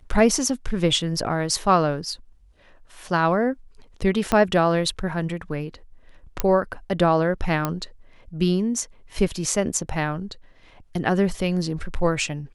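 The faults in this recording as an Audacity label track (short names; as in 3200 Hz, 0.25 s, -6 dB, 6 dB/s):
4.320000	4.320000	pop -7 dBFS
6.400000	6.400000	pop -8 dBFS
7.650000	7.650000	pop -9 dBFS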